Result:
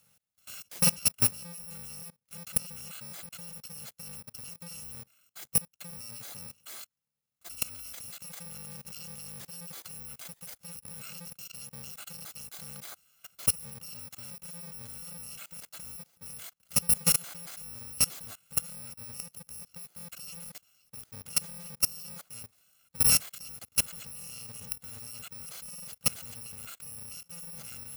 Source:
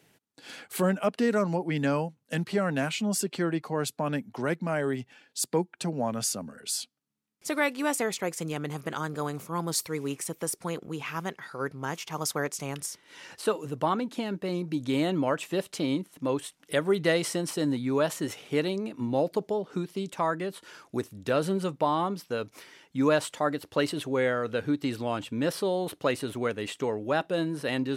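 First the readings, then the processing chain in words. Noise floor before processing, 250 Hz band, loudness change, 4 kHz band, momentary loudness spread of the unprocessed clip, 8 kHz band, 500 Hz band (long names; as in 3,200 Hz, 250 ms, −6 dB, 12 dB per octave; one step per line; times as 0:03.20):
−69 dBFS, −18.0 dB, −2.5 dB, −0.5 dB, 8 LU, +4.5 dB, −24.0 dB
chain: samples in bit-reversed order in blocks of 128 samples
output level in coarse steps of 23 dB
level +2.5 dB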